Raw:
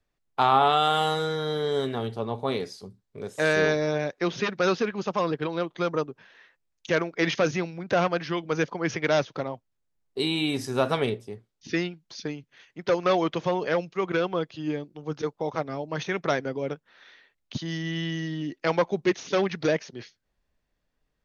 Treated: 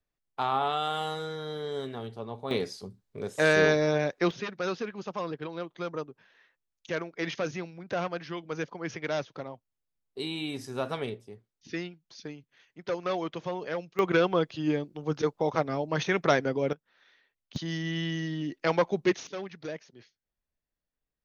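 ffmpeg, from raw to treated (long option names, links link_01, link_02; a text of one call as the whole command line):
ffmpeg -i in.wav -af "asetnsamples=nb_out_samples=441:pad=0,asendcmd='2.51 volume volume 0.5dB;4.31 volume volume -8dB;13.99 volume volume 2dB;16.73 volume volume -10dB;17.56 volume volume -1.5dB;19.27 volume volume -13.5dB',volume=-8dB" out.wav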